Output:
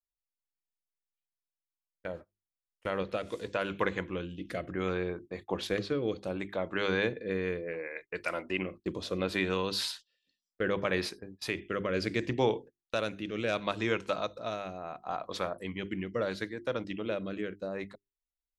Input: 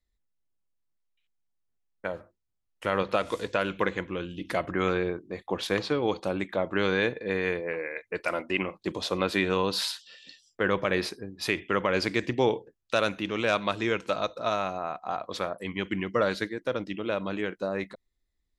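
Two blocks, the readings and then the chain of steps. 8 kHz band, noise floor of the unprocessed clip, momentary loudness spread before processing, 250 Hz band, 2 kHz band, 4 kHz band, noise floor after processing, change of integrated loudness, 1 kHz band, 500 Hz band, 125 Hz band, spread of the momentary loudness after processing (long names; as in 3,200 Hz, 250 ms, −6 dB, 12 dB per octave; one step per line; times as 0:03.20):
−4.5 dB, −79 dBFS, 9 LU, −4.0 dB, −5.5 dB, −4.5 dB, below −85 dBFS, −5.0 dB, −6.5 dB, −4.5 dB, −3.0 dB, 9 LU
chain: mains-hum notches 50/100/150/200/250/300/350/400 Hz
noise gate −41 dBFS, range −21 dB
low-shelf EQ 83 Hz +7 dB
rotating-speaker cabinet horn 0.7 Hz
level −2.5 dB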